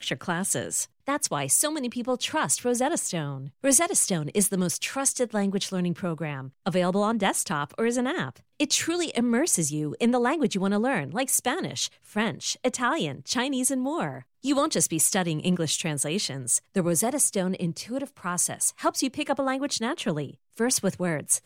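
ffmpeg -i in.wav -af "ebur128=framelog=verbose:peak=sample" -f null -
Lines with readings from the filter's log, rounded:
Integrated loudness:
  I:         -25.7 LUFS
  Threshold: -35.7 LUFS
Loudness range:
  LRA:         2.6 LU
  Threshold: -45.6 LUFS
  LRA low:   -26.8 LUFS
  LRA high:  -24.3 LUFS
Sample peak:
  Peak:       -7.6 dBFS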